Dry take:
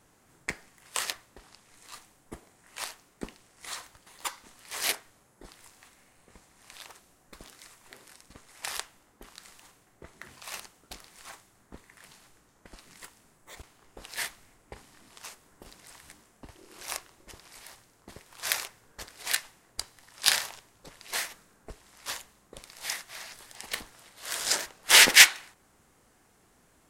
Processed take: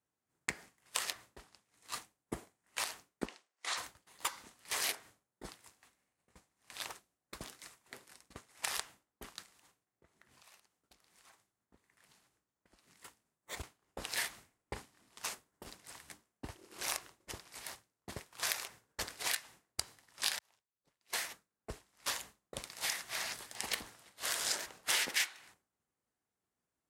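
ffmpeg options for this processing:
-filter_complex "[0:a]asplit=3[s0][s1][s2];[s0]afade=t=out:st=3.25:d=0.02[s3];[s1]highpass=470,lowpass=6800,afade=t=in:st=3.25:d=0.02,afade=t=out:st=3.76:d=0.02[s4];[s2]afade=t=in:st=3.76:d=0.02[s5];[s3][s4][s5]amix=inputs=3:normalize=0,asplit=3[s6][s7][s8];[s6]afade=t=out:st=9.42:d=0.02[s9];[s7]acompressor=threshold=0.00316:ratio=12:attack=3.2:release=140:knee=1:detection=peak,afade=t=in:st=9.42:d=0.02,afade=t=out:st=13.04:d=0.02[s10];[s8]afade=t=in:st=13.04:d=0.02[s11];[s9][s10][s11]amix=inputs=3:normalize=0,asplit=2[s12][s13];[s12]atrim=end=20.39,asetpts=PTS-STARTPTS,afade=t=out:st=20.386:d=0.004:c=hsin[s14];[s13]atrim=start=20.39,asetpts=PTS-STARTPTS,afade=t=in:d=1.72[s15];[s14][s15]concat=n=2:v=0:a=1,agate=range=0.0224:threshold=0.00631:ratio=3:detection=peak,acompressor=threshold=0.01:ratio=5,highpass=58,volume=2"

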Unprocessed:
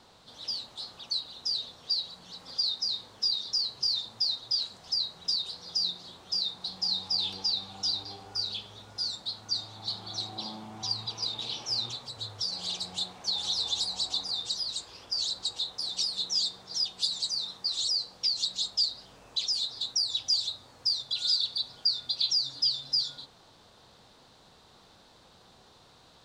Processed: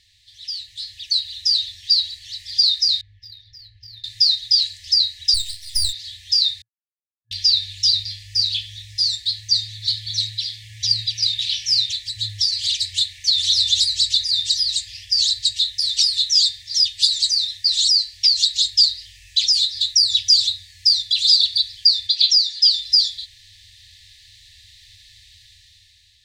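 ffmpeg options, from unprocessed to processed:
-filter_complex "[0:a]asettb=1/sr,asplit=3[s0][s1][s2];[s0]atrim=end=3.014[s3];[s1]atrim=start=3.01:end=4.04,asetpts=PTS-STARTPTS,afade=t=in:d=0.004:c=qsin,afade=t=out:st=1.026:d=0.004:c=qsin,adynamicsmooth=sensitivity=0.5:basefreq=870[s4];[s2]atrim=start=4.036[s5];[s3][s4]acrossfade=d=0.004:c1=hsin:c2=qsin[s6];[s6][s5]acrossfade=d=0.004:c1=qsin:c2=hsin,asettb=1/sr,asplit=3[s7][s8][s9];[s7]atrim=end=5.344[s10];[s8]atrim=start=5.34:end=5.93,asetpts=PTS-STARTPTS,afade=t=in:d=0.004:c=qsin,afade=t=out:st=0.586:d=0.004:c=qsin,aeval=exprs='max(val(0),0)':c=same[s11];[s9]atrim=start=5.926[s12];[s10][s11]acrossfade=d=0.004:c1=hsin:c2=qsin[s13];[s13][s12]acrossfade=d=0.004:c1=qsin:c2=hsin,asettb=1/sr,asplit=3[s14][s15][s16];[s14]atrim=end=22.074[s17];[s15]atrim=start=22.07:end=22.64,asetpts=PTS-STARTPTS,afade=t=in:d=0.004:c=qsin,afade=t=out:st=0.566:d=0.004:c=qsin,highpass=200,lowpass=7900[s18];[s16]atrim=start=22.636[s19];[s17][s18]acrossfade=d=0.004:c1=hsin:c2=qsin[s20];[s20][s19]acrossfade=d=0.004:c1=qsin:c2=hsin,asplit=3[s21][s22][s23];[s21]atrim=end=6.62,asetpts=PTS-STARTPTS,afade=t=out:st=6.616:d=0.004:c=hsin[s24];[s22]atrim=start=6.62:end=7.31,asetpts=PTS-STARTPTS,volume=0[s25];[s23]atrim=start=7.31,asetpts=PTS-STARTPTS,afade=t=in:d=0.004:c=hsin[s26];[s24][s25][s26]concat=n=3:v=0:a=1,afftfilt=real='re*(1-between(b*sr/4096,110,1700))':imag='im*(1-between(b*sr/4096,110,1700))':win_size=4096:overlap=0.75,dynaudnorm=f=270:g=7:m=3.16,volume=1.41"

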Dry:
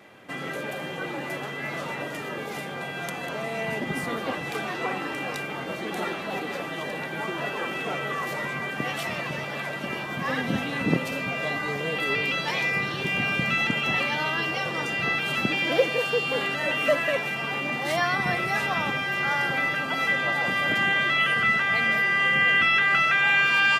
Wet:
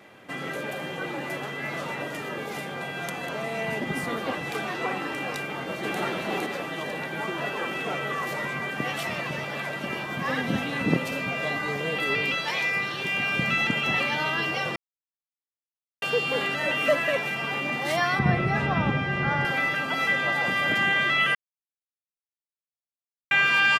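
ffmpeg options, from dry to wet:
-filter_complex "[0:a]asplit=2[s0][s1];[s1]afade=t=in:st=5.37:d=0.01,afade=t=out:st=6:d=0.01,aecho=0:1:460|920|1380:0.891251|0.133688|0.0200531[s2];[s0][s2]amix=inputs=2:normalize=0,asettb=1/sr,asplit=3[s3][s4][s5];[s3]atrim=end=12.344[s6];[s4]atrim=start=12.34:end=13.34,asetpts=PTS-STARTPTS,afade=t=in:d=0.004:c=qsin,afade=t=out:st=0.996:d=0.004:c=qsin,lowshelf=f=380:g=-7.5[s7];[s5]atrim=start=13.336[s8];[s6][s7]acrossfade=d=0.004:c1=hsin:c2=qsin[s9];[s9][s8]acrossfade=d=0.004:c1=qsin:c2=hsin,asettb=1/sr,asplit=3[s10][s11][s12];[s10]atrim=end=18.194[s13];[s11]atrim=start=18.19:end=19.45,asetpts=PTS-STARTPTS,afade=t=in:d=0.004:c=qsin,afade=t=out:st=1.256:d=0.004:c=qsin,aemphasis=mode=reproduction:type=riaa[s14];[s12]atrim=start=19.446[s15];[s13][s14]acrossfade=d=0.004:c1=hsin:c2=qsin[s16];[s16][s15]acrossfade=d=0.004:c1=qsin:c2=hsin,asplit=5[s17][s18][s19][s20][s21];[s17]atrim=end=14.76,asetpts=PTS-STARTPTS,afade=t=out:st=14.756:d=0.004:c=hsin[s22];[s18]atrim=start=14.76:end=16.02,asetpts=PTS-STARTPTS,volume=0[s23];[s19]atrim=start=16.02:end=21.35,asetpts=PTS-STARTPTS,afade=t=in:d=0.004:c=hsin,afade=t=out:st=5.326:d=0.004:c=hsin[s24];[s20]atrim=start=21.35:end=23.31,asetpts=PTS-STARTPTS,volume=0[s25];[s21]atrim=start=23.31,asetpts=PTS-STARTPTS,afade=t=in:d=0.004:c=hsin[s26];[s22][s23][s24][s25][s26]concat=n=5:v=0:a=1"

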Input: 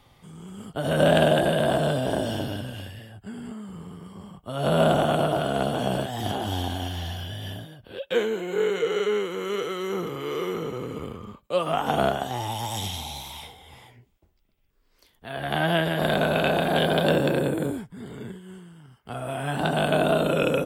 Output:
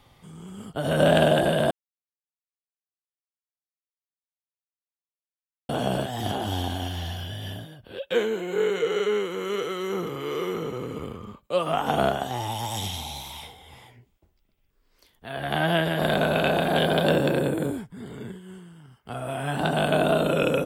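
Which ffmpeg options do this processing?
-filter_complex "[0:a]asplit=3[s0][s1][s2];[s0]atrim=end=1.71,asetpts=PTS-STARTPTS,afade=t=out:st=1.706:d=0.004:c=hsin[s3];[s1]atrim=start=1.71:end=5.69,asetpts=PTS-STARTPTS,volume=0[s4];[s2]atrim=start=5.69,asetpts=PTS-STARTPTS,afade=t=in:d=0.004:c=hsin[s5];[s3][s4][s5]concat=n=3:v=0:a=1"

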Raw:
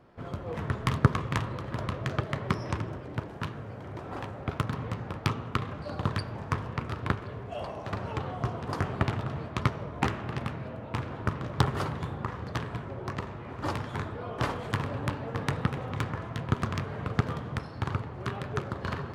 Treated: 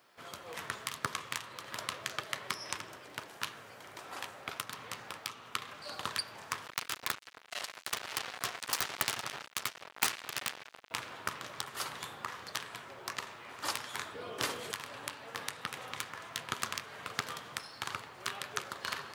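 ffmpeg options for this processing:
-filter_complex "[0:a]asettb=1/sr,asplit=3[s0][s1][s2];[s0]atrim=end=6.664[s3];[s1]atrim=start=6.66:end=10.91,asetpts=PTS-STARTPTS,afade=t=in:d=0.004:c=qsin,afade=t=out:st=4.246:d=0.004:c=qsin,acrusher=bits=4:mix=0:aa=0.5[s4];[s2]atrim=start=10.906[s5];[s3][s4]acrossfade=d=0.004:c1=hsin:c2=qsin[s6];[s6][s5]acrossfade=d=0.004:c1=qsin:c2=hsin,asettb=1/sr,asplit=3[s7][s8][s9];[s7]atrim=end=14.144[s10];[s8]atrim=start=14.14:end=14.72,asetpts=PTS-STARTPTS,afade=t=in:d=0.004:c=qsin,afade=t=out:st=0.576:d=0.004:c=qsin,lowshelf=f=580:t=q:w=1.5:g=6.5[s11];[s9]atrim=start=14.716[s12];[s10][s11]acrossfade=d=0.004:c1=hsin:c2=qsin[s13];[s13][s12]acrossfade=d=0.004:c1=qsin:c2=hsin,aderivative,alimiter=level_in=1.06:limit=0.0631:level=0:latency=1:release=364,volume=0.944,volume=4.22"

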